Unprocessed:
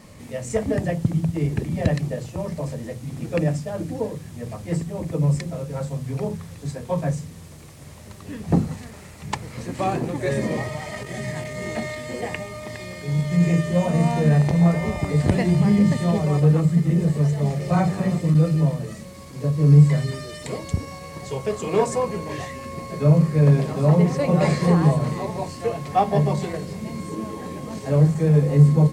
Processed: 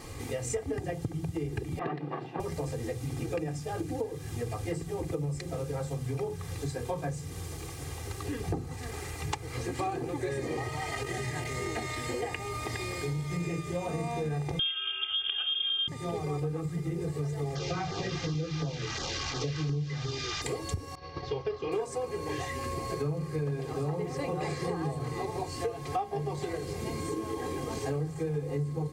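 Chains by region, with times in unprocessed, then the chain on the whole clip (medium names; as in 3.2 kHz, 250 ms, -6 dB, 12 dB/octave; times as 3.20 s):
1.79–2.40 s: comb filter that takes the minimum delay 1.1 ms + steep high-pass 160 Hz + distance through air 410 m
14.59–15.88 s: high-pass 120 Hz + frequency inversion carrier 3.4 kHz
17.55–20.42 s: one-bit delta coder 32 kbps, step -28.5 dBFS + LFO notch saw down 2.8 Hz 300–2800 Hz + tape noise reduction on one side only encoder only
20.95–21.72 s: steep low-pass 5.4 kHz 48 dB/octave + expander -31 dBFS
whole clip: comb 2.5 ms, depth 86%; compression 6:1, threshold -33 dBFS; trim +2 dB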